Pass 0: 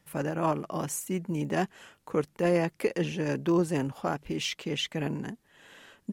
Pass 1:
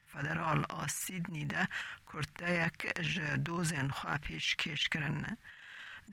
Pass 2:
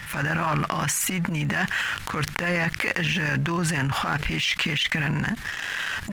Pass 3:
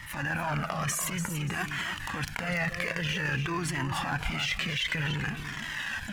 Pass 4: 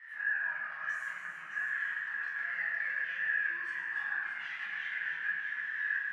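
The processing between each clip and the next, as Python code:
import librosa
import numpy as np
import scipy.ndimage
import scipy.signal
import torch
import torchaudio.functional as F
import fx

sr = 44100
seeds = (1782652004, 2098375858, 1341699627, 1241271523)

y1 = fx.curve_eq(x, sr, hz=(100.0, 410.0, 1700.0, 3000.0, 6300.0, 12000.0), db=(0, -18, 7, 2, -5, -9))
y1 = fx.transient(y1, sr, attack_db=-11, sustain_db=11)
y2 = fx.leveller(y1, sr, passes=2)
y2 = fx.env_flatten(y2, sr, amount_pct=70)
y3 = fx.echo_feedback(y2, sr, ms=290, feedback_pct=31, wet_db=-8.5)
y3 = fx.comb_cascade(y3, sr, direction='falling', hz=0.53)
y3 = y3 * librosa.db_to_amplitude(-2.0)
y4 = fx.bandpass_q(y3, sr, hz=1700.0, q=13.0)
y4 = y4 + 10.0 ** (-8.0 / 20.0) * np.pad(y4, (int(620 * sr / 1000.0), 0))[:len(y4)]
y4 = fx.rev_fdn(y4, sr, rt60_s=1.8, lf_ratio=0.8, hf_ratio=0.7, size_ms=86.0, drr_db=-8.0)
y4 = y4 * librosa.db_to_amplitude(-2.0)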